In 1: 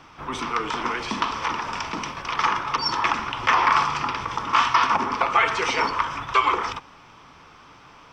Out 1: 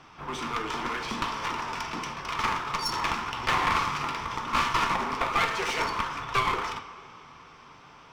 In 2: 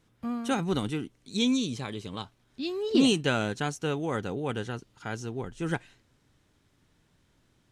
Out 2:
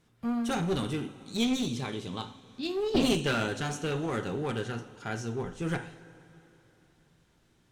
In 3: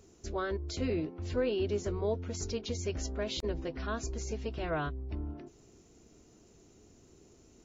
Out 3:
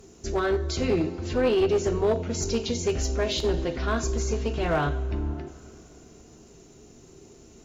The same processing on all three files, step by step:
two-slope reverb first 0.42 s, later 3.3 s, from -18 dB, DRR 5.5 dB; one-sided clip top -28 dBFS; normalise peaks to -12 dBFS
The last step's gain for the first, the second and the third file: -4.0, -0.5, +8.0 dB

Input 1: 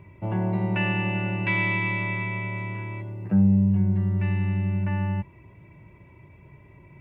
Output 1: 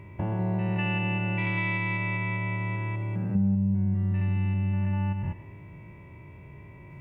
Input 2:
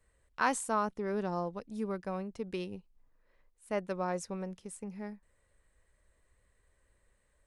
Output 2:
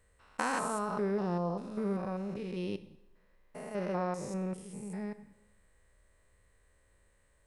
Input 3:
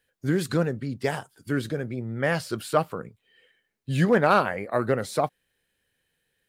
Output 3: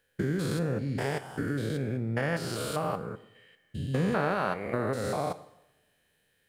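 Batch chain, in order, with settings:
stepped spectrum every 0.2 s; compressor 2.5:1, threshold -33 dBFS; two-slope reverb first 0.78 s, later 2.2 s, from -24 dB, DRR 11.5 dB; gain +4.5 dB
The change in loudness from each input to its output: -3.0, +0.5, -5.0 LU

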